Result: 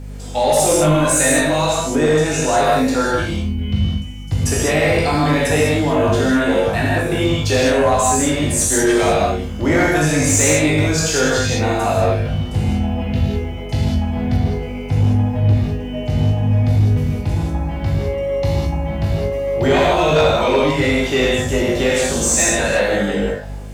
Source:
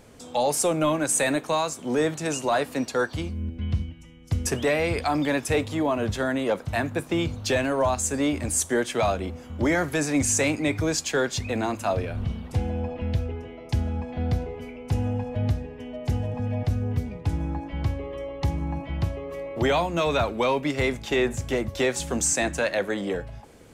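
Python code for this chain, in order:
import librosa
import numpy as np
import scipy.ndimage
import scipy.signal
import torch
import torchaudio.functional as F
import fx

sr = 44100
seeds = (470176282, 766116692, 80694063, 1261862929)

y = fx.notch(x, sr, hz=1100.0, q=21.0)
y = fx.comb_fb(y, sr, f0_hz=51.0, decay_s=0.27, harmonics='all', damping=0.0, mix_pct=90)
y = fx.rev_gated(y, sr, seeds[0], gate_ms=230, shape='flat', drr_db=-5.5)
y = fx.add_hum(y, sr, base_hz=50, snr_db=15)
y = fx.high_shelf(y, sr, hz=7000.0, db=-8.5, at=(14.37, 16.51))
y = fx.quant_dither(y, sr, seeds[1], bits=12, dither='triangular')
y = fx.fold_sine(y, sr, drive_db=5, ceiling_db=-7.5)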